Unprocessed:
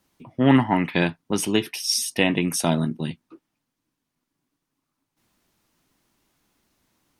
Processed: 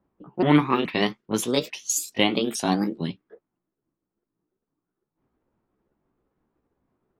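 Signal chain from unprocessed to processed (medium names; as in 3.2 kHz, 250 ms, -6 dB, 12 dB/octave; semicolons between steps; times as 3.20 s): sawtooth pitch modulation +6.5 st, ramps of 425 ms; level-controlled noise filter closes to 950 Hz, open at -19.5 dBFS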